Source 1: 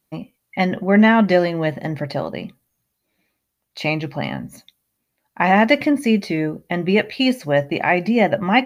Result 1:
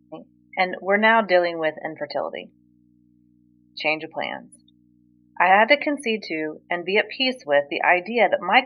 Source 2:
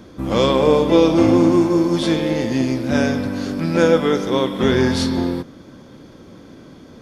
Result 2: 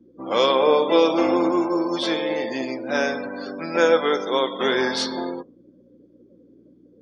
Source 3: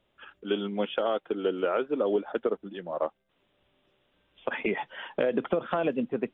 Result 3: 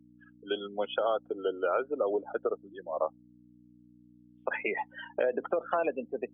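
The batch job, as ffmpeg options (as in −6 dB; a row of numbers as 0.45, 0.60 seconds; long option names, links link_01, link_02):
-af "afftdn=noise_reduction=35:noise_floor=-34,aeval=exprs='val(0)+0.0141*(sin(2*PI*60*n/s)+sin(2*PI*2*60*n/s)/2+sin(2*PI*3*60*n/s)/3+sin(2*PI*4*60*n/s)/4+sin(2*PI*5*60*n/s)/5)':channel_layout=same,highpass=500,volume=1dB"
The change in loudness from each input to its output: −2.5, −4.5, −2.5 LU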